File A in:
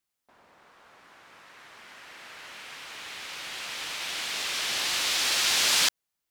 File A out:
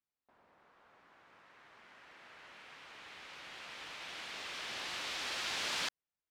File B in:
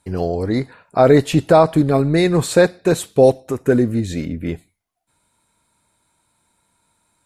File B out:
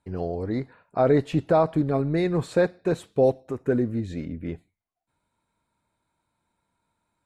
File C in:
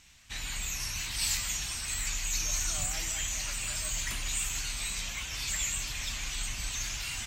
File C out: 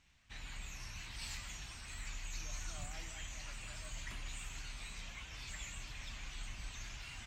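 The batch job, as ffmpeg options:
-af "aemphasis=mode=reproduction:type=75kf,volume=-8dB"

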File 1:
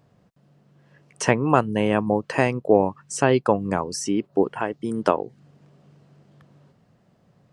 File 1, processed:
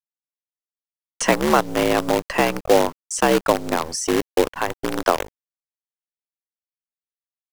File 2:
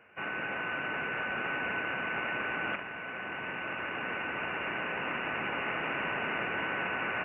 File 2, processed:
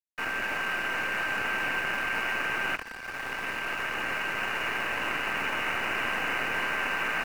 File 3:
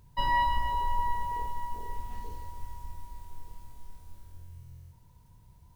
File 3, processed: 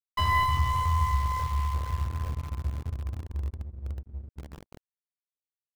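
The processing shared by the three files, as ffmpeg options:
-filter_complex "[0:a]afreqshift=64,anlmdn=1,asplit=2[a][b];[b]acompressor=threshold=-33dB:ratio=6,volume=3dB[c];[a][c]amix=inputs=2:normalize=0,agate=range=-33dB:threshold=-43dB:ratio=3:detection=peak,acrossover=split=120|920[d][e][f];[e]acrusher=bits=4:dc=4:mix=0:aa=0.000001[g];[d][g][f]amix=inputs=3:normalize=0,aeval=exprs='sgn(val(0))*max(abs(val(0))-0.00473,0)':c=same"

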